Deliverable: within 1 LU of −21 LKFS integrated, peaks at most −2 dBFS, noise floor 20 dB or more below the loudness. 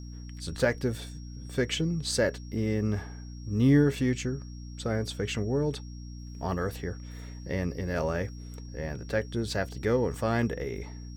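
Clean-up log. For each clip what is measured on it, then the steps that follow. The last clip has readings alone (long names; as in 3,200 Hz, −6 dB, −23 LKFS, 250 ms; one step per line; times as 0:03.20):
mains hum 60 Hz; hum harmonics up to 300 Hz; level of the hum −39 dBFS; interfering tone 5,600 Hz; level of the tone −54 dBFS; integrated loudness −30.0 LKFS; sample peak −12.0 dBFS; target loudness −21.0 LKFS
→ hum removal 60 Hz, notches 5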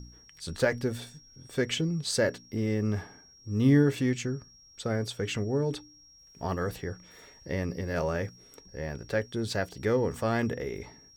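mains hum none found; interfering tone 5,600 Hz; level of the tone −54 dBFS
→ notch filter 5,600 Hz, Q 30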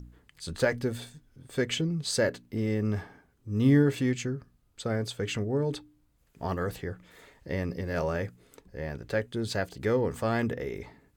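interfering tone none found; integrated loudness −30.0 LKFS; sample peak −12.0 dBFS; target loudness −21.0 LKFS
→ level +9 dB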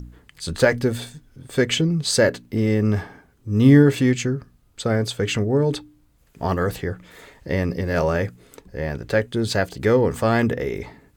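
integrated loudness −21.0 LKFS; sample peak −3.0 dBFS; background noise floor −58 dBFS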